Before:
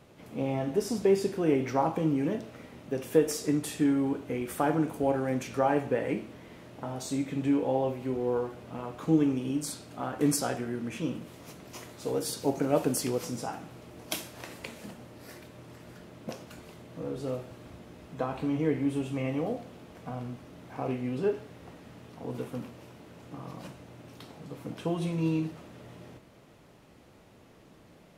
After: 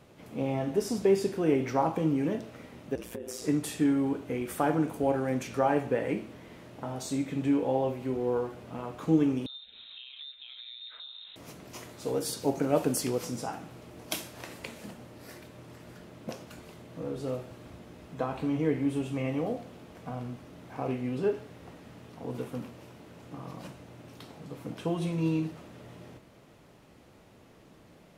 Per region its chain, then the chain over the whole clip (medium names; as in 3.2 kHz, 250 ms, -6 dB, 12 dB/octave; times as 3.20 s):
2.95–3.42 s: compression 20:1, threshold -32 dBFS + comb 6.9 ms, depth 34% + ring modulator 59 Hz
9.46–11.36 s: compression 8:1, threshold -41 dBFS + distance through air 370 m + frequency inversion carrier 3.9 kHz
whole clip: none